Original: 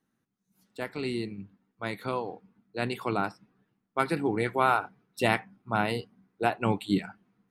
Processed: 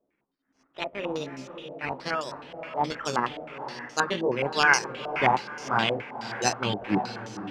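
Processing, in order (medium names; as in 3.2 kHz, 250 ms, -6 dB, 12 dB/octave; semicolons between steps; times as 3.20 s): pitch bend over the whole clip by +6 st ending unshifted; decimation with a swept rate 10×, swing 60% 0.66 Hz; on a send: echo that smears into a reverb 525 ms, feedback 44%, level -9.5 dB; on the sum: step-sequenced low-pass 9.5 Hz 660–6100 Hz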